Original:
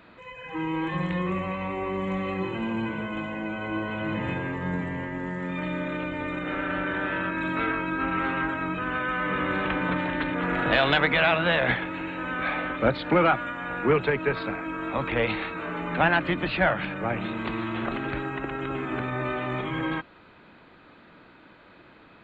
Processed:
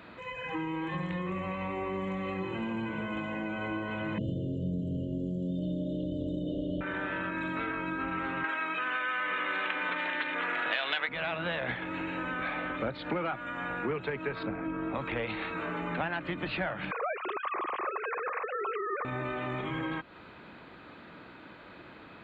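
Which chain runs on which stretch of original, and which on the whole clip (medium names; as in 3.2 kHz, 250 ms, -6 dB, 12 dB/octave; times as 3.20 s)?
4.18–6.81 s: brick-wall FIR band-stop 700–2800 Hz + bass shelf 400 Hz +10.5 dB
8.44–11.09 s: high-pass 330 Hz + peaking EQ 2.7 kHz +11.5 dB 2.8 oct
14.43–14.95 s: low-pass 3.5 kHz + tilt shelf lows +5.5 dB, about 720 Hz
16.91–19.05 s: formants replaced by sine waves + peaking EQ 1.1 kHz +13.5 dB 0.28 oct
whole clip: high-pass 41 Hz; compression 4:1, threshold -35 dBFS; trim +2.5 dB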